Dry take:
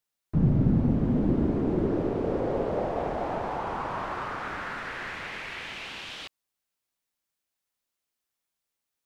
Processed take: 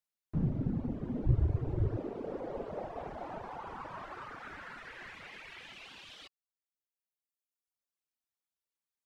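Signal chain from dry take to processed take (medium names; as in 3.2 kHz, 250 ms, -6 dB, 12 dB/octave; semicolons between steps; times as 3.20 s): 1.26–1.97 s: resonant low shelf 150 Hz +10.5 dB, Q 3; reverb removal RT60 1.7 s; trim -8 dB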